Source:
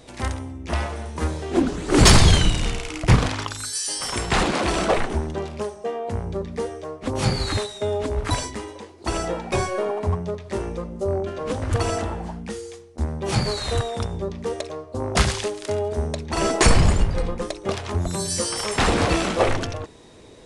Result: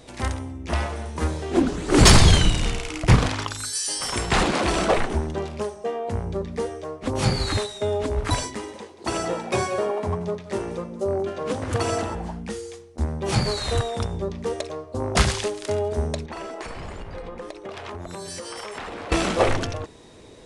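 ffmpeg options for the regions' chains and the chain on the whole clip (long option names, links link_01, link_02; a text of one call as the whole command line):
ffmpeg -i in.wav -filter_complex "[0:a]asettb=1/sr,asplit=3[link_01][link_02][link_03];[link_01]atrim=end=8.454[link_04];[link_02]atrim=start=8.45:end=12.15,asetpts=PTS-STARTPTS,afade=type=in:duration=0.004:curve=qsin,afade=type=out:start_time=3.696:duration=0.004:curve=qsin,highpass=110,aecho=1:1:182:0.2,atrim=end_sample=163170[link_05];[link_03]atrim=start=12.146[link_06];[link_04][link_05]acrossfade=duration=0.004:curve1=hsin:curve2=qsin[link_07];[link_07][link_06]acrossfade=duration=0.004:curve1=qsin:curve2=hsin,asettb=1/sr,asplit=3[link_08][link_09][link_10];[link_08]atrim=end=16.264[link_11];[link_09]atrim=start=16.26:end=19.12,asetpts=PTS-STARTPTS,afade=type=in:duration=0.004:curve=qsin,afade=type=out:start_time=2.856:duration=0.004:curve=qsin,bass=frequency=250:gain=-10,treble=frequency=4000:gain=-10,acompressor=threshold=-30dB:ratio=20:attack=3.2:release=140:knee=1:detection=peak[link_12];[link_10]atrim=start=19.116[link_13];[link_11][link_12]acrossfade=duration=0.004:curve1=hsin:curve2=qsin[link_14];[link_14][link_13]acrossfade=duration=0.004:curve1=qsin:curve2=hsin" out.wav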